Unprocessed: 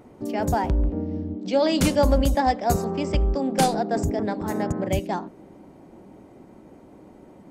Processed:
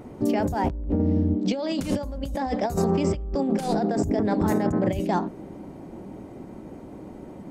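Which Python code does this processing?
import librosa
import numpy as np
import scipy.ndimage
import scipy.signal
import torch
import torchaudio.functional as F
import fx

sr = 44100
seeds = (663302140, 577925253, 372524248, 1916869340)

y = fx.low_shelf(x, sr, hz=320.0, db=5.0)
y = fx.over_compress(y, sr, threshold_db=-25.0, ratio=-1.0)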